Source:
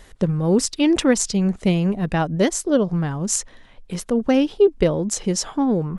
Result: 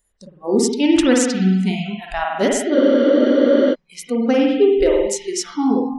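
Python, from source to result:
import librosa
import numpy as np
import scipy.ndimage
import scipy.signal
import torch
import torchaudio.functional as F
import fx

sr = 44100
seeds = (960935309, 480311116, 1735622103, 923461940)

y = fx.rev_spring(x, sr, rt60_s=1.5, pass_ms=(48,), chirp_ms=80, drr_db=-1.5)
y = fx.noise_reduce_blind(y, sr, reduce_db=28)
y = fx.spec_freeze(y, sr, seeds[0], at_s=2.77, hold_s=0.96)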